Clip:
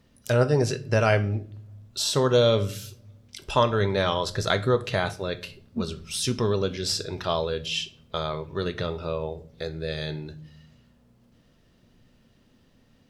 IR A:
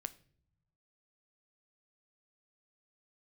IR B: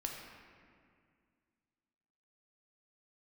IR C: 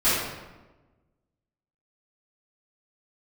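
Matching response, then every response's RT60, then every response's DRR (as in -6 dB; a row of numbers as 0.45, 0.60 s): A; not exponential, 2.1 s, 1.2 s; 12.0, 0.0, -16.0 dB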